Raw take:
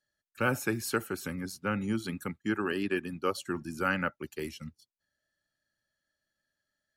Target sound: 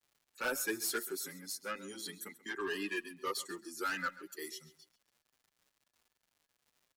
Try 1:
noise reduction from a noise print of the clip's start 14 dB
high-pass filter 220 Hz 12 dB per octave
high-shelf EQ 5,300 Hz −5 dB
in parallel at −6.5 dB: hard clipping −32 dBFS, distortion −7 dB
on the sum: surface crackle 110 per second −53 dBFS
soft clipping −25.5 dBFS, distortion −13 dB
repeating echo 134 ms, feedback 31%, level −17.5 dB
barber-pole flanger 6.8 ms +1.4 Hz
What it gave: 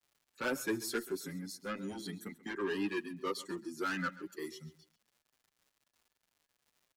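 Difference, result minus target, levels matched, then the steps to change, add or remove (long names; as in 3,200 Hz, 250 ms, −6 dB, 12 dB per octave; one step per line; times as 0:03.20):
250 Hz band +6.0 dB; 8,000 Hz band −6.0 dB
change: high-pass filter 470 Hz 12 dB per octave
change: high-shelf EQ 5,300 Hz +5 dB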